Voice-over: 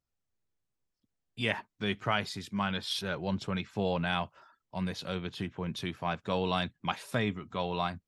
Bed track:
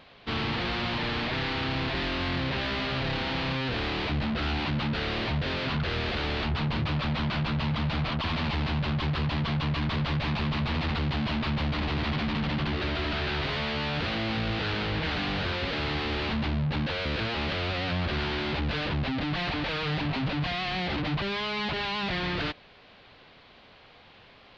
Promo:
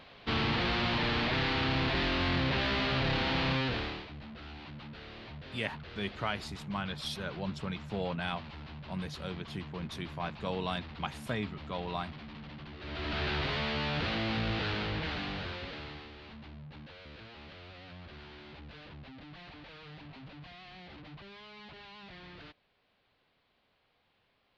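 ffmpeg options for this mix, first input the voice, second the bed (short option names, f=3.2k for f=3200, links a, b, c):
-filter_complex "[0:a]adelay=4150,volume=-4.5dB[a];[1:a]volume=14dB,afade=t=out:st=3.58:d=0.48:silence=0.141254,afade=t=in:st=12.79:d=0.44:silence=0.188365,afade=t=out:st=14.52:d=1.6:silence=0.141254[b];[a][b]amix=inputs=2:normalize=0"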